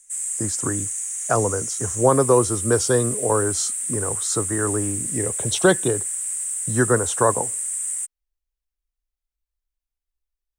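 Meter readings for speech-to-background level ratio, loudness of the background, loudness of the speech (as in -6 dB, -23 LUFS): 1.0 dB, -24.0 LUFS, -23.0 LUFS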